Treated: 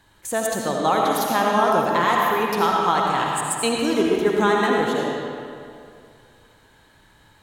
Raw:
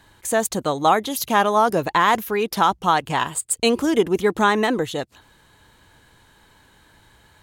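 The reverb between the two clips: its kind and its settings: digital reverb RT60 2.4 s, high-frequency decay 0.7×, pre-delay 40 ms, DRR -2 dB; gain -4.5 dB

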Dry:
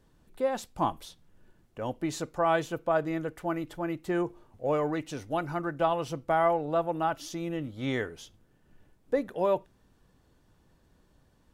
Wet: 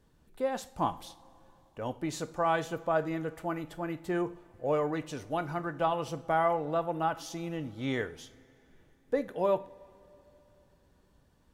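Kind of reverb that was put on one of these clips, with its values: two-slope reverb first 0.43 s, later 3.5 s, from -18 dB, DRR 12 dB; gain -2 dB

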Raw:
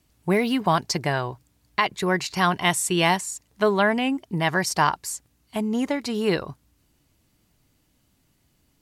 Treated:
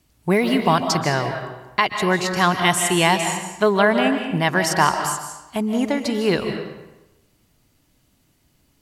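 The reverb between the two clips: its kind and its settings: digital reverb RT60 1 s, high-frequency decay 0.8×, pre-delay 0.11 s, DRR 5.5 dB; gain +3 dB

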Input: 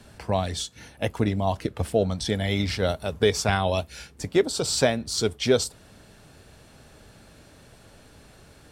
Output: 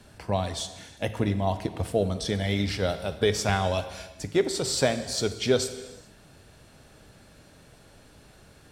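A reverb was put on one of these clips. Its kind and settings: non-linear reverb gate 0.46 s falling, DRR 9.5 dB; gain -2.5 dB

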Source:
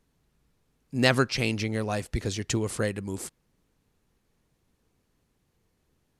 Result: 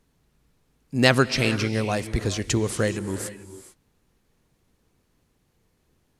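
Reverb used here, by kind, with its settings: non-linear reverb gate 0.47 s rising, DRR 11.5 dB; gain +4 dB

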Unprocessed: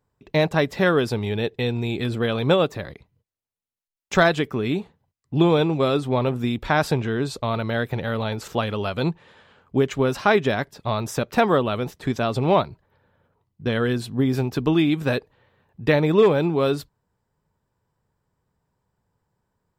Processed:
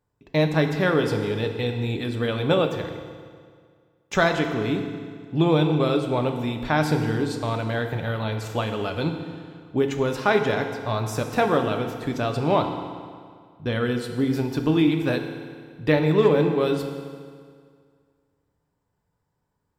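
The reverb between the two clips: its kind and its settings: FDN reverb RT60 2 s, low-frequency decay 1×, high-frequency decay 0.85×, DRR 4.5 dB; gain -3 dB

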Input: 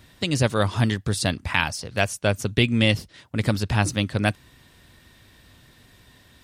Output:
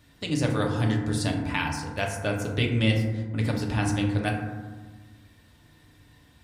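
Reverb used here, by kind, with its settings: FDN reverb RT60 1.4 s, low-frequency decay 1.5×, high-frequency decay 0.3×, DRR -0.5 dB; gain -8 dB

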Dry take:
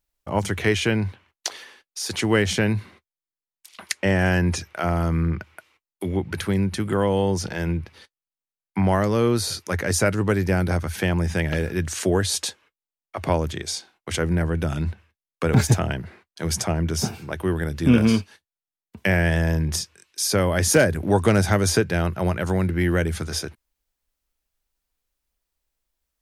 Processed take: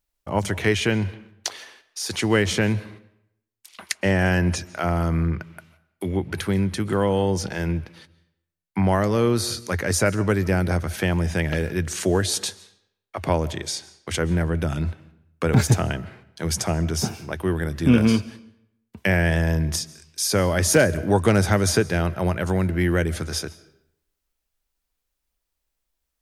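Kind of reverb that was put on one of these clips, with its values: digital reverb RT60 0.76 s, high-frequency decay 0.8×, pre-delay 0.1 s, DRR 19 dB

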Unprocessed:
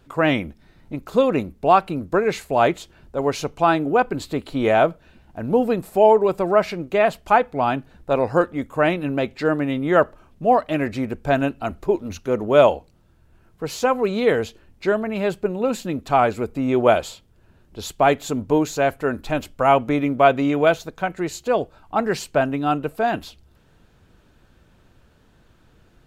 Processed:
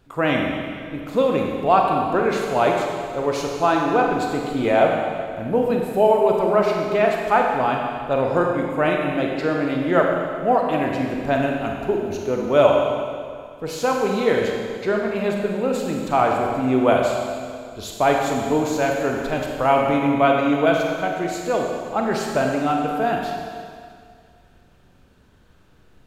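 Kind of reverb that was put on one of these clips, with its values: Schroeder reverb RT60 2.1 s, combs from 31 ms, DRR 0 dB; gain -2.5 dB

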